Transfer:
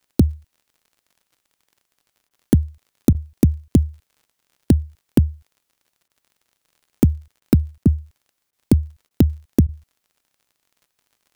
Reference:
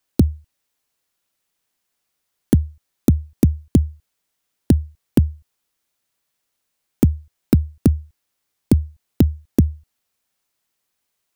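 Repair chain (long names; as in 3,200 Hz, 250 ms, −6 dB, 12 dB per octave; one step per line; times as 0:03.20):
click removal
repair the gap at 0:02.29/0:03.13/0:06.08/0:07.40/0:07.84/0:08.51/0:09.09/0:09.67, 16 ms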